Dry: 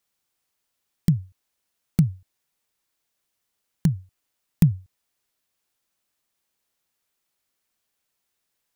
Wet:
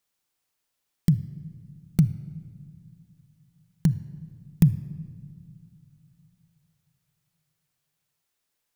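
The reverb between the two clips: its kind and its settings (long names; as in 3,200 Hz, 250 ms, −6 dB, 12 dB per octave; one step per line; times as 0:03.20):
rectangular room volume 3,000 cubic metres, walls mixed, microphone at 0.43 metres
level −1.5 dB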